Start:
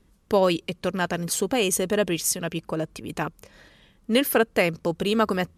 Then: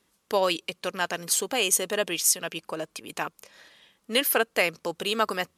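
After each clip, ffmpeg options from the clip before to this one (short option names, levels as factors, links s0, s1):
-af "highpass=f=1100:p=1,equalizer=f=1700:w=1.5:g=-2,volume=1.41"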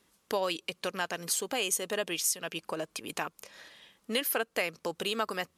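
-af "acompressor=threshold=0.02:ratio=2,volume=1.12"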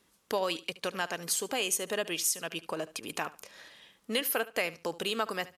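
-af "aecho=1:1:73|146:0.126|0.029"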